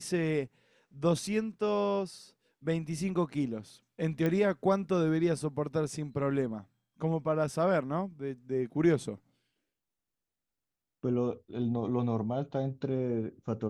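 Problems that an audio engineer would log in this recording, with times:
4.26 s: pop -19 dBFS

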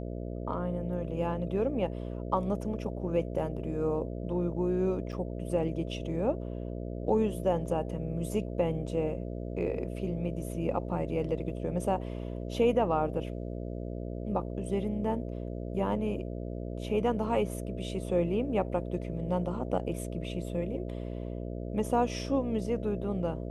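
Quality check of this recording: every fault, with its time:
buzz 60 Hz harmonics 11 -37 dBFS
5.12–5.13 s: dropout 6.7 ms

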